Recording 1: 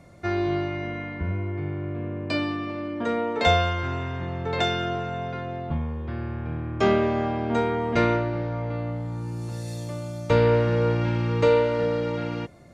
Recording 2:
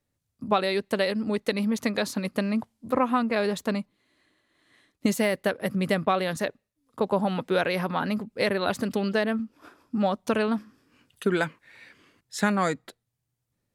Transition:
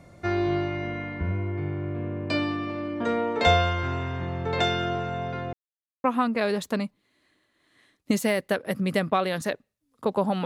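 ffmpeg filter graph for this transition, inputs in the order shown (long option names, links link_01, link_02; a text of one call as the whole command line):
ffmpeg -i cue0.wav -i cue1.wav -filter_complex "[0:a]apad=whole_dur=10.45,atrim=end=10.45,asplit=2[link_01][link_02];[link_01]atrim=end=5.53,asetpts=PTS-STARTPTS,afade=type=out:start_time=5.526:duration=0.004:curve=hsin[link_03];[link_02]atrim=start=5.53:end=6.04,asetpts=PTS-STARTPTS,volume=0[link_04];[1:a]atrim=start=2.99:end=7.4,asetpts=PTS-STARTPTS,afade=type=in:duration=0.004:curve=hsin[link_05];[link_03][link_04][link_05]concat=n=3:v=0:a=1" out.wav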